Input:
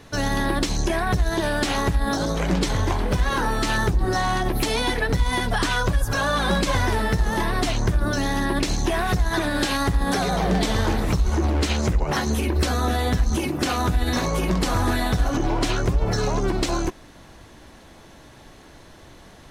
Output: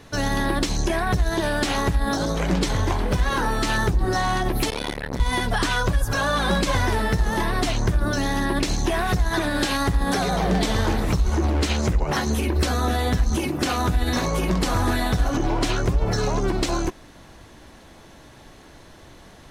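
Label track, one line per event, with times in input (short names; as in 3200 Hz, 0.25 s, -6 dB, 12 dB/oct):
4.700000	5.200000	core saturation saturates under 580 Hz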